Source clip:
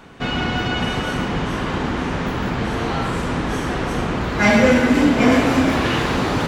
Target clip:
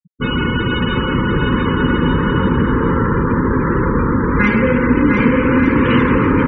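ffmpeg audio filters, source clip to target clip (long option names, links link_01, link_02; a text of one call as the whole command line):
ffmpeg -i in.wav -af "lowpass=frequency=2400:poles=1,afftfilt=real='re*gte(hypot(re,im),0.0631)':imag='im*gte(hypot(re,im),0.0631)':win_size=1024:overlap=0.75,acompressor=threshold=-17dB:ratio=6,asuperstop=centerf=700:order=8:qfactor=2,aecho=1:1:700|1190|1533|1773|1941:0.631|0.398|0.251|0.158|0.1,volume=6.5dB" out.wav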